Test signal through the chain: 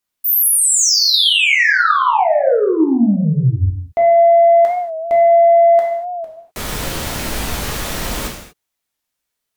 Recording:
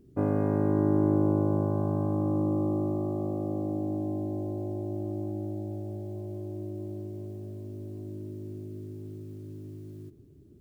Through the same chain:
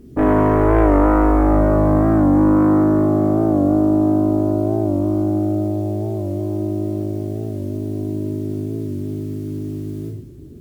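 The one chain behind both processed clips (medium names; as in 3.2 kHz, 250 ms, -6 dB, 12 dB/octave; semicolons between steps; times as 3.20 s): sine folder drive 10 dB, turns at -13 dBFS; gated-style reverb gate 270 ms falling, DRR -1.5 dB; warped record 45 rpm, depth 100 cents; trim -1 dB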